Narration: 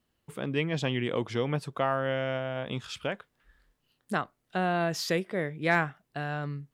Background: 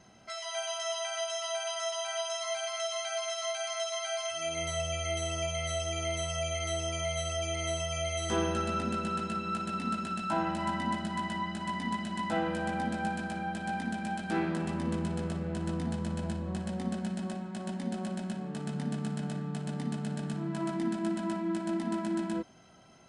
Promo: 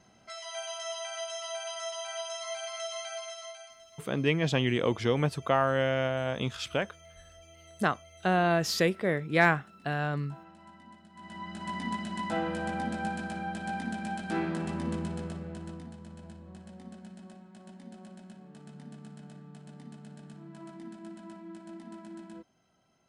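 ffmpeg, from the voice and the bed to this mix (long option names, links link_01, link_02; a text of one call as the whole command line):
ffmpeg -i stem1.wav -i stem2.wav -filter_complex "[0:a]adelay=3700,volume=2.5dB[link_01];[1:a]volume=17.5dB,afade=type=out:start_time=3:duration=0.78:silence=0.125893,afade=type=in:start_time=11.14:duration=0.65:silence=0.0944061,afade=type=out:start_time=14.87:duration=1.06:silence=0.237137[link_02];[link_01][link_02]amix=inputs=2:normalize=0" out.wav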